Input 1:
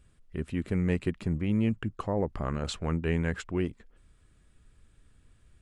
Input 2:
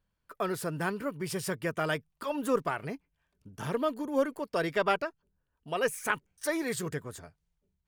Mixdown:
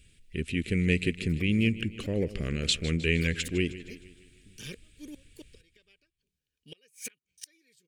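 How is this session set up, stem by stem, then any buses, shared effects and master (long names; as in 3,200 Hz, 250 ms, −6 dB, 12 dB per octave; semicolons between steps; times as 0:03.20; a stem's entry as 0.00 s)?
+1.0 dB, 0.00 s, no send, echo send −15.5 dB, no processing
−7.0 dB, 1.00 s, no send, no echo send, parametric band 5,400 Hz +6.5 dB 1.2 octaves; notch comb filter 680 Hz; gate with flip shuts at −25 dBFS, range −31 dB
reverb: not used
echo: repeating echo 155 ms, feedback 53%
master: drawn EQ curve 470 Hz 0 dB, 930 Hz −23 dB, 2,400 Hz +13 dB, 5,500 Hz +8 dB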